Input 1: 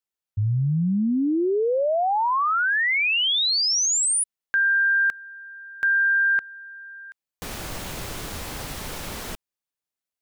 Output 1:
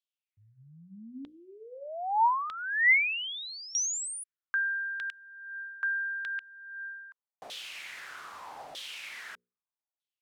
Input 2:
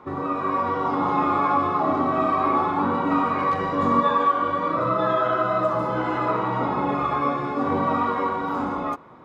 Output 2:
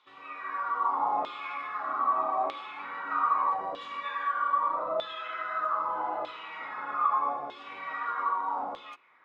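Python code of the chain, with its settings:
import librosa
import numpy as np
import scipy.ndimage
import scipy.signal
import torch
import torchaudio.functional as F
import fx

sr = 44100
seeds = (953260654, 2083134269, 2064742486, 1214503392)

y = fx.high_shelf(x, sr, hz=3600.0, db=11.0)
y = fx.filter_lfo_bandpass(y, sr, shape='saw_down', hz=0.8, low_hz=650.0, high_hz=3500.0, q=4.2)
y = fx.hum_notches(y, sr, base_hz=60, count=9)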